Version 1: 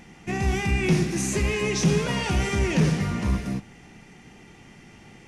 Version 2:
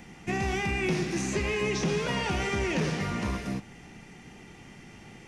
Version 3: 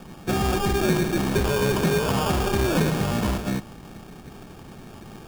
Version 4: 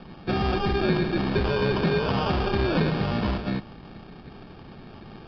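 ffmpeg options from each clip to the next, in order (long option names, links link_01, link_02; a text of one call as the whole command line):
ffmpeg -i in.wav -filter_complex "[0:a]acrossover=split=300|2200|6500[link_01][link_02][link_03][link_04];[link_01]acompressor=threshold=-32dB:ratio=4[link_05];[link_02]acompressor=threshold=-28dB:ratio=4[link_06];[link_03]acompressor=threshold=-37dB:ratio=4[link_07];[link_04]acompressor=threshold=-56dB:ratio=4[link_08];[link_05][link_06][link_07][link_08]amix=inputs=4:normalize=0" out.wav
ffmpeg -i in.wav -af "acrusher=samples=22:mix=1:aa=0.000001,volume=6.5dB" out.wav
ffmpeg -i in.wav -af "aresample=11025,aresample=44100,volume=-1.5dB" out.wav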